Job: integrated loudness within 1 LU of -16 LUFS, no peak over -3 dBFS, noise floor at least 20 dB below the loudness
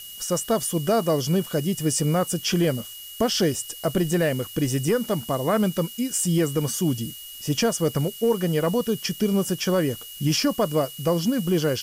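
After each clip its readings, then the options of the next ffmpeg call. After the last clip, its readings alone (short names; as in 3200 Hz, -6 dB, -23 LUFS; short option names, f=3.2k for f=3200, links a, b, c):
steady tone 2900 Hz; tone level -41 dBFS; noise floor -40 dBFS; noise floor target -44 dBFS; loudness -24.0 LUFS; peak -12.0 dBFS; loudness target -16.0 LUFS
-> -af "bandreject=f=2.9k:w=30"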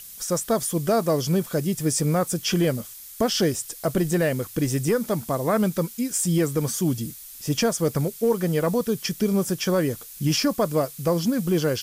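steady tone none; noise floor -42 dBFS; noise floor target -44 dBFS
-> -af "afftdn=nr=6:nf=-42"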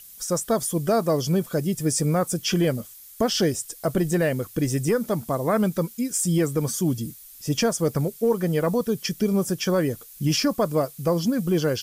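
noise floor -46 dBFS; loudness -24.0 LUFS; peak -12.0 dBFS; loudness target -16.0 LUFS
-> -af "volume=8dB"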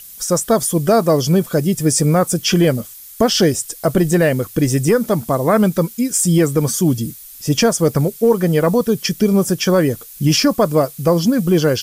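loudness -16.0 LUFS; peak -4.0 dBFS; noise floor -38 dBFS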